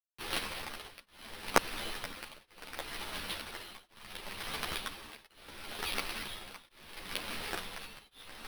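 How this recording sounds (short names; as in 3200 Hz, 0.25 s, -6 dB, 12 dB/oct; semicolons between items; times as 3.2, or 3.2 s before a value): a quantiser's noise floor 8-bit, dither none; tremolo triangle 0.71 Hz, depth 100%; aliases and images of a low sample rate 7100 Hz, jitter 0%; a shimmering, thickened sound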